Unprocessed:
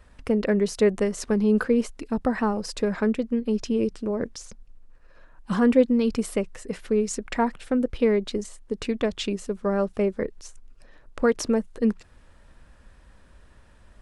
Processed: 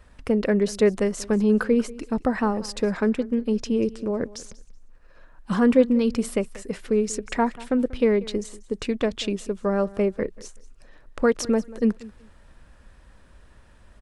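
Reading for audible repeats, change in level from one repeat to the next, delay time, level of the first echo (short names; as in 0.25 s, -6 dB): 2, -13.5 dB, 0.188 s, -20.0 dB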